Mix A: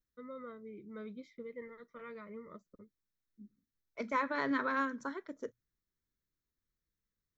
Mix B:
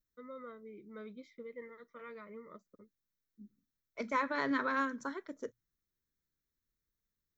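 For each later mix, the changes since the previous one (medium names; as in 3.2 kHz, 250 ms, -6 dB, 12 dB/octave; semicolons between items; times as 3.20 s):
first voice: add high-pass 240 Hz 6 dB/octave; second voice: add treble shelf 5.6 kHz +6 dB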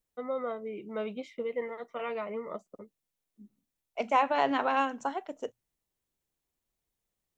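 first voice +8.5 dB; master: remove static phaser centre 2.8 kHz, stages 6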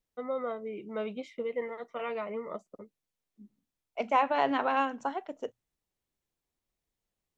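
second voice: add distance through air 75 m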